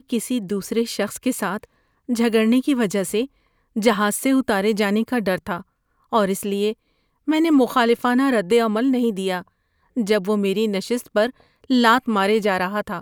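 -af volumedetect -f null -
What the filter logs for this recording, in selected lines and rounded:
mean_volume: -20.8 dB
max_volume: -3.1 dB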